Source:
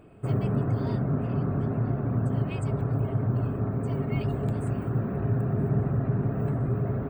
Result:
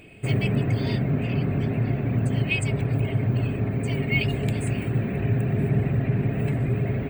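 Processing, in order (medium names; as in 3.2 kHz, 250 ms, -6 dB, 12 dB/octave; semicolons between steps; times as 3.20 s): resonant high shelf 1.7 kHz +10 dB, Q 3; trim +3 dB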